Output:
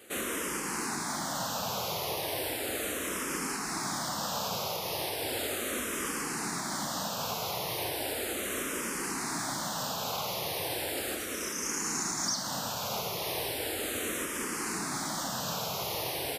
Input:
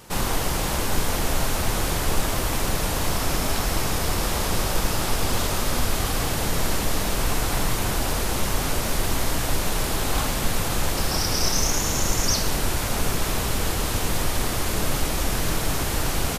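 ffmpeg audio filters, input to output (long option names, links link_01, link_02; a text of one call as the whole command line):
ffmpeg -i in.wav -filter_complex "[0:a]highpass=210,alimiter=limit=-17dB:level=0:latency=1:release=226,asplit=2[link_01][link_02];[link_02]afreqshift=-0.36[link_03];[link_01][link_03]amix=inputs=2:normalize=1,volume=-3dB" out.wav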